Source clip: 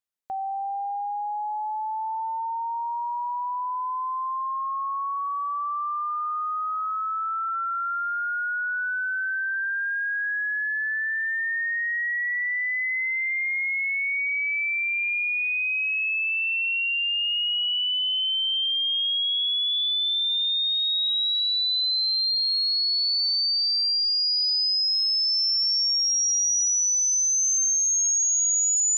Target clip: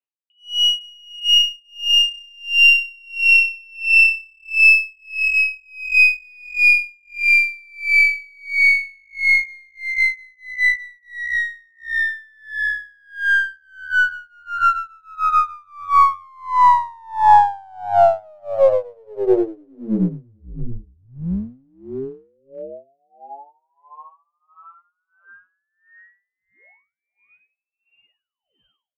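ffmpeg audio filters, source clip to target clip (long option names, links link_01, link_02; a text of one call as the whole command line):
ffmpeg -i in.wav -filter_complex "[0:a]equalizer=frequency=125:width_type=o:width=1:gain=-6,equalizer=frequency=250:width_type=o:width=1:gain=-9,equalizer=frequency=500:width_type=o:width=1:gain=-3,equalizer=frequency=1000:width_type=o:width=1:gain=10,equalizer=frequency=2000:width_type=o:width=1:gain=-4,dynaudnorm=framelen=110:gausssize=9:maxgain=15.5dB,aexciter=amount=2.7:drive=3.6:freq=2800,flanger=delay=17.5:depth=2.3:speed=0.22,lowpass=frequency=3100:width_type=q:width=0.5098,lowpass=frequency=3100:width_type=q:width=0.6013,lowpass=frequency=3100:width_type=q:width=0.9,lowpass=frequency=3100:width_type=q:width=2.563,afreqshift=-3700,asplit=2[link_01][link_02];[link_02]adelay=434,lowpass=frequency=1900:poles=1,volume=-11dB,asplit=2[link_03][link_04];[link_04]adelay=434,lowpass=frequency=1900:poles=1,volume=0.33,asplit=2[link_05][link_06];[link_06]adelay=434,lowpass=frequency=1900:poles=1,volume=0.33,asplit=2[link_07][link_08];[link_08]adelay=434,lowpass=frequency=1900:poles=1,volume=0.33[link_09];[link_01][link_03][link_05][link_07][link_09]amix=inputs=5:normalize=0,asplit=2[link_10][link_11];[link_11]aeval=exprs='clip(val(0),-1,0.0708)':channel_layout=same,volume=-5.5dB[link_12];[link_10][link_12]amix=inputs=2:normalize=0,aeval=exprs='val(0)*pow(10,-35*(0.5-0.5*cos(2*PI*1.5*n/s))/20)':channel_layout=same,volume=-3.5dB" out.wav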